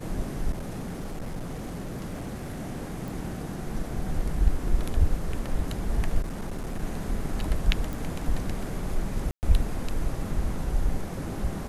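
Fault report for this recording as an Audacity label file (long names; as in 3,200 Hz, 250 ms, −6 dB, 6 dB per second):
0.510000	2.590000	clipping −29.5 dBFS
3.080000	3.080000	click
6.210000	6.790000	clipping −28 dBFS
7.930000	7.930000	click
9.310000	9.430000	drop-out 119 ms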